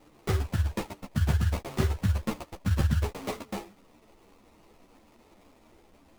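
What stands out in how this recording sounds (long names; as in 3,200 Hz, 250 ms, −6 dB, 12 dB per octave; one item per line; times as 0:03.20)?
aliases and images of a low sample rate 1,600 Hz, jitter 20%
a shimmering, thickened sound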